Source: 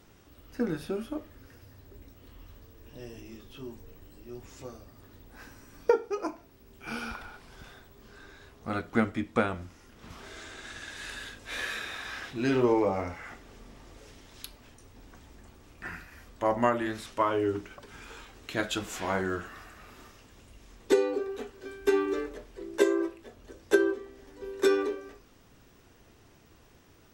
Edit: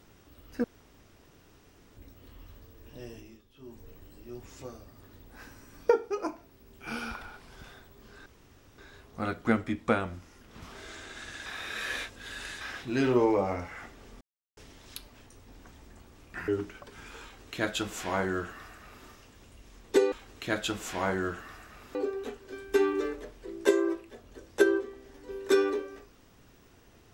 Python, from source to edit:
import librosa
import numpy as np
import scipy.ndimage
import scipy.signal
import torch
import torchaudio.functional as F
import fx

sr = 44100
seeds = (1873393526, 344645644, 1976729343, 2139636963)

y = fx.edit(x, sr, fx.room_tone_fill(start_s=0.64, length_s=1.33),
    fx.fade_down_up(start_s=3.12, length_s=0.74, db=-13.5, fade_s=0.31),
    fx.insert_room_tone(at_s=8.26, length_s=0.52),
    fx.reverse_span(start_s=10.94, length_s=1.15),
    fx.silence(start_s=13.69, length_s=0.36),
    fx.cut(start_s=15.96, length_s=1.48),
    fx.duplicate(start_s=18.19, length_s=1.83, to_s=21.08), tone=tone)